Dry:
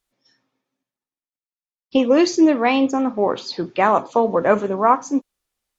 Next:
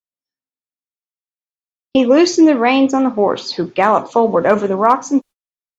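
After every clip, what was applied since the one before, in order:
noise gate −35 dBFS, range −36 dB
in parallel at +1 dB: brickwall limiter −10 dBFS, peak gain reduction 8 dB
on the sum: hard clipping −0.5 dBFS, distortion −38 dB
level −1 dB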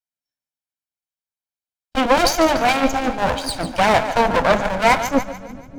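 lower of the sound and its delayed copy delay 1.3 ms
echo with a time of its own for lows and highs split 330 Hz, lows 619 ms, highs 145 ms, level −11 dB
harmonic generator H 6 −17 dB, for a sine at −2.5 dBFS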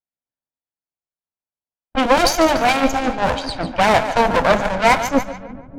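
low-pass that shuts in the quiet parts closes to 1,100 Hz, open at −14 dBFS
level +1 dB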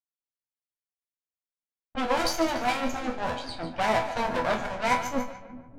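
resonators tuned to a chord E2 sus4, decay 0.26 s

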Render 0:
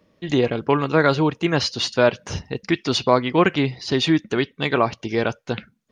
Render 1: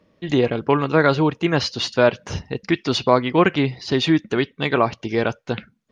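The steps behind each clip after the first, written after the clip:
high-shelf EQ 7,400 Hz −9 dB
level +1 dB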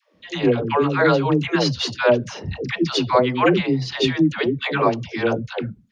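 all-pass dispersion lows, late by 149 ms, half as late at 470 Hz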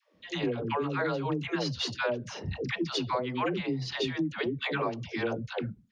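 downward compressor, threshold −21 dBFS, peak gain reduction 10.5 dB
level −6 dB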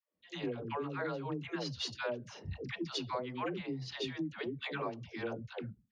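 multiband upward and downward expander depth 40%
level −7.5 dB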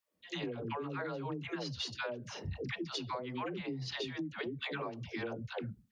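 downward compressor, threshold −42 dBFS, peak gain reduction 10 dB
level +6 dB

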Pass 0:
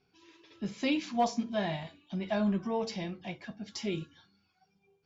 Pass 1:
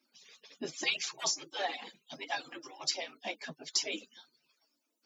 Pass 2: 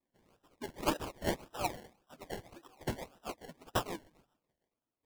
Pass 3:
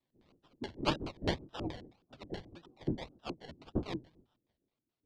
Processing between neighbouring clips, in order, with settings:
harmonic-percussive split with one part muted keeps percussive; elliptic high-pass filter 150 Hz; bass and treble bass −2 dB, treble +10 dB; level +5 dB
feedback echo with a high-pass in the loop 132 ms, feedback 19%, high-pass 180 Hz, level −15.5 dB; sample-and-hold swept by an LFO 28×, swing 60% 1.8 Hz; expander for the loud parts 1.5 to 1, over −50 dBFS; level +1 dB
sub-octave generator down 1 octave, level −1 dB; auto-filter low-pass square 4.7 Hz 320–4,000 Hz; level −1 dB

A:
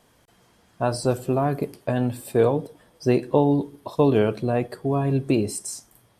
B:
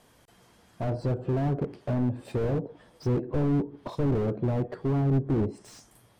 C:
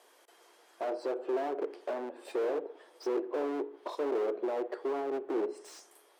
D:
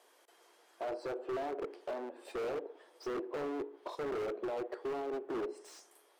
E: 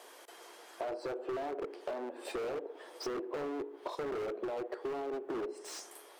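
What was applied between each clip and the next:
treble cut that deepens with the level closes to 750 Hz, closed at −19.5 dBFS; slew-rate limiting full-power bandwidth 20 Hz
elliptic high-pass filter 350 Hz, stop band 80 dB; spring reverb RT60 1 s, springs 31/38 ms, chirp 50 ms, DRR 18 dB
wave folding −28 dBFS; level −3.5 dB
downward compressor 3 to 1, threshold −51 dBFS, peak gain reduction 12 dB; level +11.5 dB

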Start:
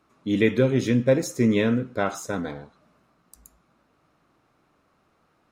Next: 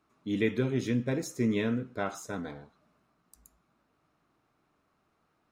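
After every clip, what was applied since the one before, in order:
notch filter 530 Hz, Q 12
level −7.5 dB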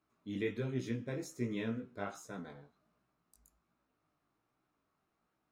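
chorus effect 1.3 Hz, delay 15.5 ms, depth 5.5 ms
level −5.5 dB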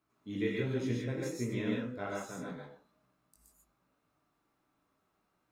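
reverb whose tail is shaped and stops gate 170 ms rising, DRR −2 dB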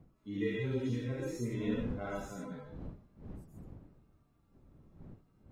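harmonic-percussive split with one part muted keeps harmonic
wind on the microphone 190 Hz −50 dBFS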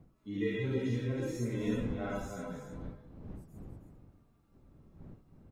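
single-tap delay 318 ms −9 dB
level +1 dB

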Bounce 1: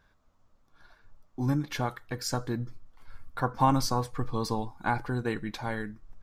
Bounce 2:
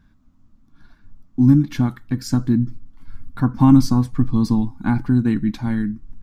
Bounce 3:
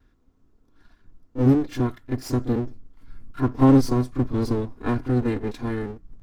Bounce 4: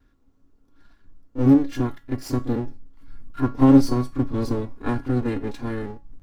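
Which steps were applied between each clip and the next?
low shelf with overshoot 350 Hz +10.5 dB, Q 3; level +1 dB
lower of the sound and its delayed copy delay 2.9 ms; backwards echo 30 ms −11.5 dB; level −4 dB
tuned comb filter 280 Hz, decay 0.25 s, harmonics all, mix 70%; level +8 dB

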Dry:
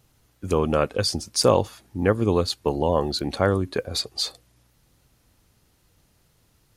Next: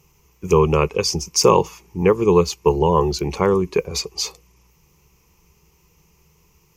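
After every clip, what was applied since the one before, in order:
EQ curve with evenly spaced ripples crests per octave 0.77, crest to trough 15 dB
level +2.5 dB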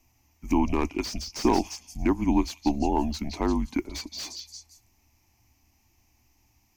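echo through a band-pass that steps 172 ms, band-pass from 4,200 Hz, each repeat 0.7 octaves, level −6 dB
frequency shifter −140 Hz
slew-rate limiting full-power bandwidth 270 Hz
level −8 dB

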